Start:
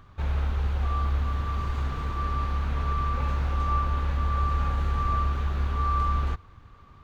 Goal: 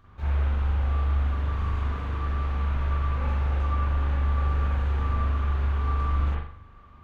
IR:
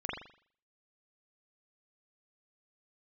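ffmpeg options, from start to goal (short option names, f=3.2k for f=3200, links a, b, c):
-filter_complex "[1:a]atrim=start_sample=2205[a];[0:a][a]afir=irnorm=-1:irlink=0,volume=-4dB"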